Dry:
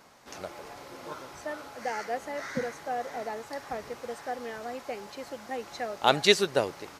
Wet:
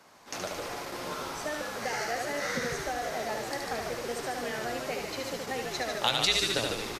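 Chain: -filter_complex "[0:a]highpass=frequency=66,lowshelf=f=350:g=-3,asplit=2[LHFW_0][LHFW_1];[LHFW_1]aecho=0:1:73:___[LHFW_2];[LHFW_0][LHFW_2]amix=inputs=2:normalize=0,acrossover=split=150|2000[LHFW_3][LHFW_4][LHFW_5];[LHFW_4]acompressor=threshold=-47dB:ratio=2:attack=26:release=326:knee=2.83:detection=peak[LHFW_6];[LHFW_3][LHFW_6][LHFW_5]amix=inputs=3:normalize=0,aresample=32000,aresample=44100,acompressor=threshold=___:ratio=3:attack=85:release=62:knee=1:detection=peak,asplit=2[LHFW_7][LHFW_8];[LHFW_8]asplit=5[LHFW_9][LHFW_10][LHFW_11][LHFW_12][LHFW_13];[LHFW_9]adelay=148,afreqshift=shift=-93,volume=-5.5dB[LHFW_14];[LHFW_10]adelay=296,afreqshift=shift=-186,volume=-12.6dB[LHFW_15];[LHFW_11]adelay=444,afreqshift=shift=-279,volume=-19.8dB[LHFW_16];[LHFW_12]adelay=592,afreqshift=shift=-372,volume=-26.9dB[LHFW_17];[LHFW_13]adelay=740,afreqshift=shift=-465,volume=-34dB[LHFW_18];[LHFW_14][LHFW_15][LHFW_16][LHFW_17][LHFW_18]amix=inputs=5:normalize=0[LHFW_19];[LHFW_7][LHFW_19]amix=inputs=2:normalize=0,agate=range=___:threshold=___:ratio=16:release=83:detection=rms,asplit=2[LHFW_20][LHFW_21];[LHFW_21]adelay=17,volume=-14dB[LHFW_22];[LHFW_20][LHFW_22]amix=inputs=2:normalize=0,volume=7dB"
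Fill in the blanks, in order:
0.596, -43dB, -8dB, -45dB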